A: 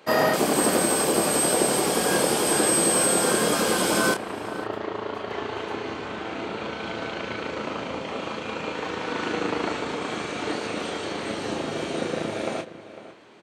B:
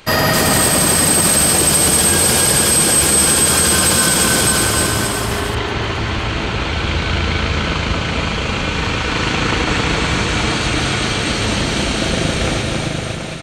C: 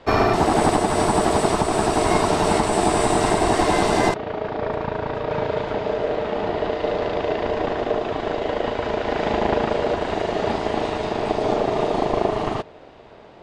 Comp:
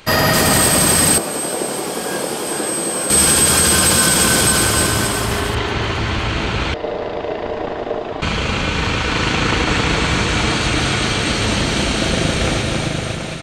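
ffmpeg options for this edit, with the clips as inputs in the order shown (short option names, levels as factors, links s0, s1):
-filter_complex "[1:a]asplit=3[s0][s1][s2];[s0]atrim=end=1.182[s3];[0:a]atrim=start=1.178:end=3.102[s4];[s1]atrim=start=3.098:end=6.742[s5];[2:a]atrim=start=6.738:end=8.222[s6];[s2]atrim=start=8.218[s7];[s3][s4]acrossfade=d=0.004:c1=hsin:c2=hsin[s8];[s8][s5]acrossfade=d=0.004:c1=hsin:c2=hsin[s9];[s9][s6]acrossfade=d=0.004:c1=hsin:c2=hsin[s10];[s10][s7]acrossfade=d=0.004:c1=hsin:c2=hsin"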